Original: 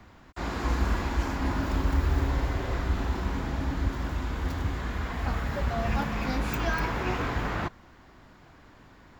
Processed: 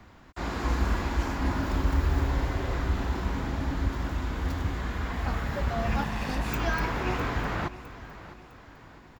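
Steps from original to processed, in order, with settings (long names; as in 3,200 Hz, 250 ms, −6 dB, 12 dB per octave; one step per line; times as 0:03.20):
0:06.02–0:06.48: lower of the sound and its delayed copy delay 1.1 ms
repeating echo 657 ms, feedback 43%, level −15.5 dB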